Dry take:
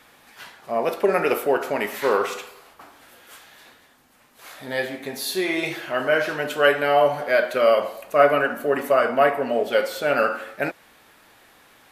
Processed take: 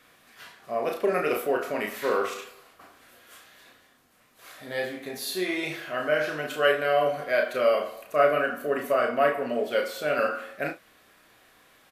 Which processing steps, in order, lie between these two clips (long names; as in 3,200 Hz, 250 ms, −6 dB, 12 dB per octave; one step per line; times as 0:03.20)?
Butterworth band-reject 870 Hz, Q 7.2
ambience of single reflections 33 ms −4.5 dB, 71 ms −17 dB
level −6 dB